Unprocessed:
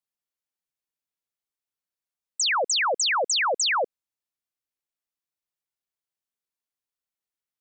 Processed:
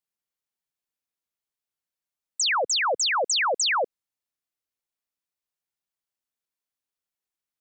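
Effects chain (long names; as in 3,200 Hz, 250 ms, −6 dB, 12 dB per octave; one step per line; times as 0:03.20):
0:02.61–0:03.18: multiband upward and downward expander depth 40%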